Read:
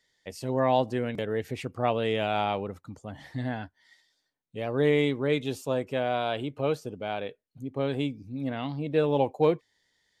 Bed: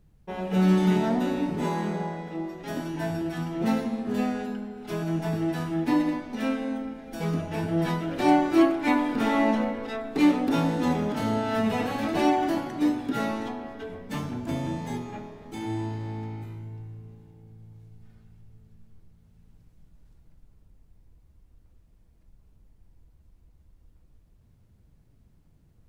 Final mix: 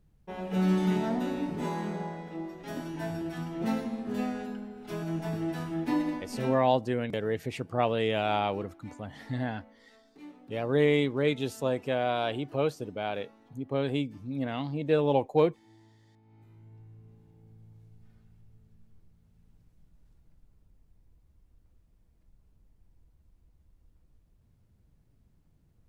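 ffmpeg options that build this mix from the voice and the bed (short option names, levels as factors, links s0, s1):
-filter_complex "[0:a]adelay=5950,volume=0.944[s0];[1:a]volume=7.5,afade=t=out:st=6.35:d=0.4:silence=0.0707946,afade=t=in:st=16.24:d=1.25:silence=0.0749894[s1];[s0][s1]amix=inputs=2:normalize=0"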